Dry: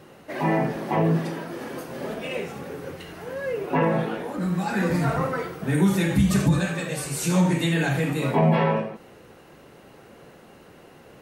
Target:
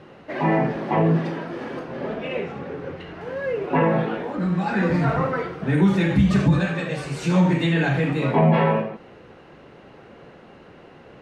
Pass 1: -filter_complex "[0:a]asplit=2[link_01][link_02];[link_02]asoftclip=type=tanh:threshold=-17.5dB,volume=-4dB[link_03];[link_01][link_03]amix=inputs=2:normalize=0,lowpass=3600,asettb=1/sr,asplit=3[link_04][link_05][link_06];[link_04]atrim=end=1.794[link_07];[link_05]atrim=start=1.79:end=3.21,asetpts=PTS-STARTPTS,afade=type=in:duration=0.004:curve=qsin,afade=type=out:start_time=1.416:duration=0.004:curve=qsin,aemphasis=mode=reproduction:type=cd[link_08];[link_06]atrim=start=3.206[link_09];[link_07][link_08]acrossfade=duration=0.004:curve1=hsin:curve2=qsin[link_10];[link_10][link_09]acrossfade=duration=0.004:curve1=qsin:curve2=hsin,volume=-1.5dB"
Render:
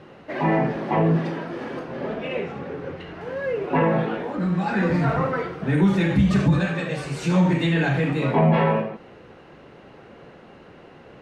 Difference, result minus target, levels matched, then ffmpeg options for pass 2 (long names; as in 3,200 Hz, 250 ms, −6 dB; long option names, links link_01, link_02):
soft clipping: distortion +9 dB
-filter_complex "[0:a]asplit=2[link_01][link_02];[link_02]asoftclip=type=tanh:threshold=-11dB,volume=-4dB[link_03];[link_01][link_03]amix=inputs=2:normalize=0,lowpass=3600,asettb=1/sr,asplit=3[link_04][link_05][link_06];[link_04]atrim=end=1.794[link_07];[link_05]atrim=start=1.79:end=3.21,asetpts=PTS-STARTPTS,afade=type=in:duration=0.004:curve=qsin,afade=type=out:start_time=1.416:duration=0.004:curve=qsin,aemphasis=mode=reproduction:type=cd[link_08];[link_06]atrim=start=3.206[link_09];[link_07][link_08]acrossfade=duration=0.004:curve1=hsin:curve2=qsin[link_10];[link_10][link_09]acrossfade=duration=0.004:curve1=qsin:curve2=hsin,volume=-1.5dB"